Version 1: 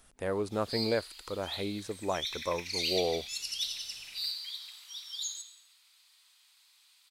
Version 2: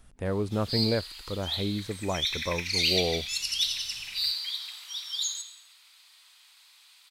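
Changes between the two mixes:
background +9.0 dB; master: add tone controls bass +11 dB, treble -4 dB

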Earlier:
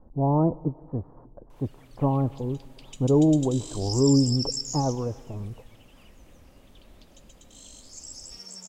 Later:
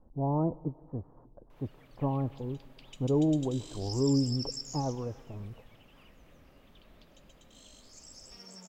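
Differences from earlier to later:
speech -7.0 dB; background: add bell 8500 Hz -12 dB 1.7 oct

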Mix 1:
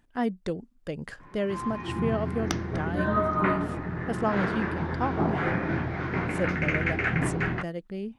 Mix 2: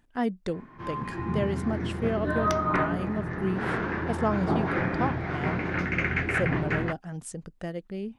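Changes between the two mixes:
first sound: entry -0.70 s; second sound -3.0 dB

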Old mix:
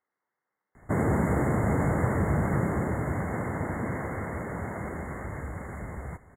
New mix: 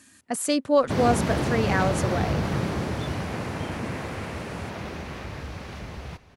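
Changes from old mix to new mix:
speech: unmuted; master: remove brick-wall FIR band-stop 2200–6700 Hz

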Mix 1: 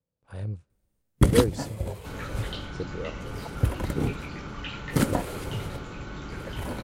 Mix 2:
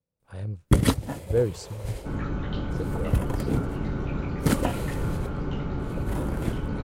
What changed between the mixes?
first sound: entry -0.50 s; second sound: add tilt shelf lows +9.5 dB, about 1400 Hz

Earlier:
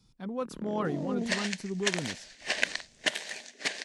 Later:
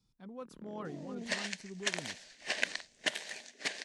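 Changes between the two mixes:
speech -11.5 dB; first sound -11.0 dB; second sound -4.5 dB

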